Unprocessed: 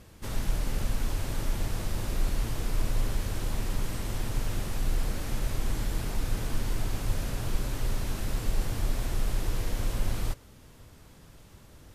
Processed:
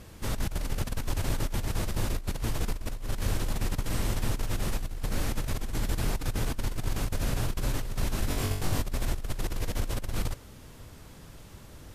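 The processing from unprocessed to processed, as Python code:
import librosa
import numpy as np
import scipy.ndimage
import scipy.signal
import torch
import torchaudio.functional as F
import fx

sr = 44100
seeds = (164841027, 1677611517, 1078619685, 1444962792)

y = fx.over_compress(x, sr, threshold_db=-29.0, ratio=-0.5)
y = fx.room_flutter(y, sr, wall_m=3.6, rt60_s=0.54, at=(8.29, 8.81), fade=0.02)
y = y * librosa.db_to_amplitude(1.5)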